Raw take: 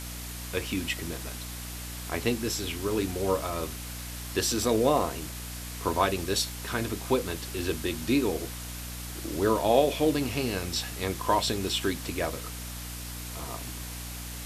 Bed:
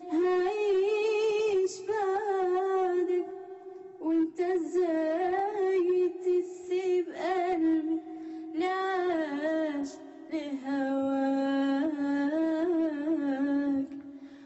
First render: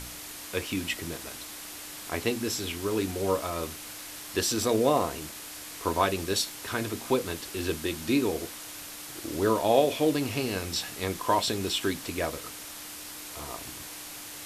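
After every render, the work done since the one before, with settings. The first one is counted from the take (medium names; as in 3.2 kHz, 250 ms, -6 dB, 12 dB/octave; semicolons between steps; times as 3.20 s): de-hum 60 Hz, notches 4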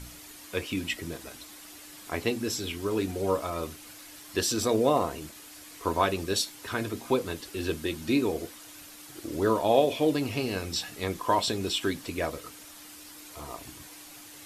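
noise reduction 8 dB, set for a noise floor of -42 dBFS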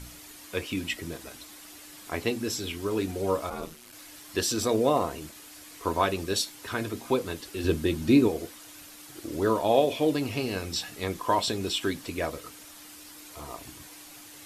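3.49–3.91 s: ring modulator 160 Hz -> 47 Hz; 7.64–8.28 s: bass shelf 460 Hz +8.5 dB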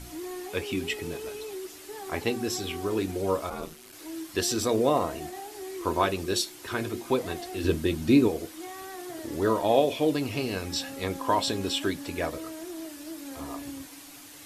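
add bed -11.5 dB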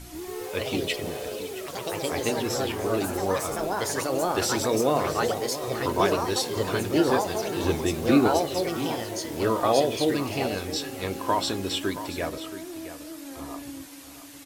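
delay 674 ms -12.5 dB; ever faster or slower copies 136 ms, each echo +3 st, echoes 3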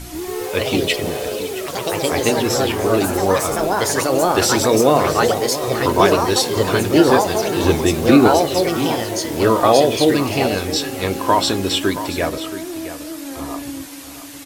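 trim +9.5 dB; peak limiter -1 dBFS, peak gain reduction 2.5 dB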